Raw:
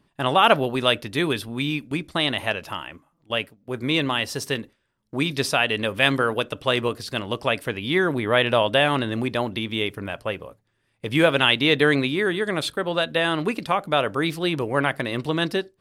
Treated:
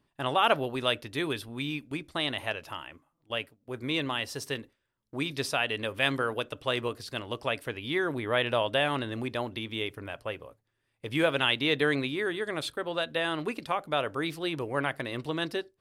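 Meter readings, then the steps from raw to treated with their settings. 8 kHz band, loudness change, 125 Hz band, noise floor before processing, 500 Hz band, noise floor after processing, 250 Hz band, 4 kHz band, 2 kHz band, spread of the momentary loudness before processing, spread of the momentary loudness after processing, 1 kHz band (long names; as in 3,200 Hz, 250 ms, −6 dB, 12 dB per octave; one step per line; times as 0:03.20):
−7.5 dB, −7.5 dB, −9.0 dB, −71 dBFS, −7.5 dB, −79 dBFS, −8.5 dB, −7.5 dB, −7.5 dB, 11 LU, 11 LU, −7.5 dB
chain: parametric band 190 Hz −9.5 dB 0.29 octaves
level −7.5 dB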